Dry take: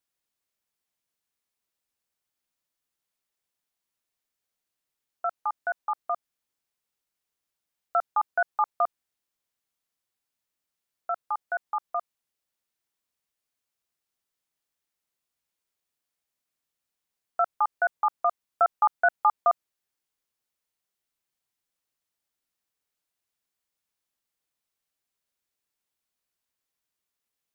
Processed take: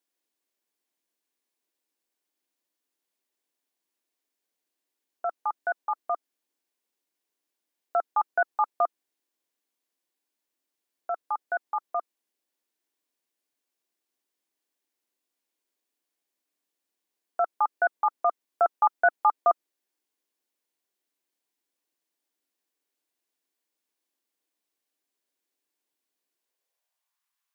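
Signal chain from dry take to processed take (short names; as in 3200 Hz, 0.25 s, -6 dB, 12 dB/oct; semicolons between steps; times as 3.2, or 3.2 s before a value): notch 1300 Hz, Q 11; high-pass sweep 300 Hz -> 1100 Hz, 26.32–27.23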